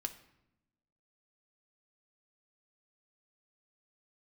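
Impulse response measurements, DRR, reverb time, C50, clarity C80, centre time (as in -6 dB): 6.0 dB, 0.85 s, 13.0 dB, 16.0 dB, 7 ms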